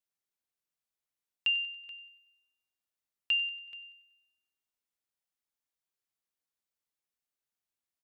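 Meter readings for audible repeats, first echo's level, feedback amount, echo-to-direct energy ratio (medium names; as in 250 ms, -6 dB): 3, -17.5 dB, 51%, -16.0 dB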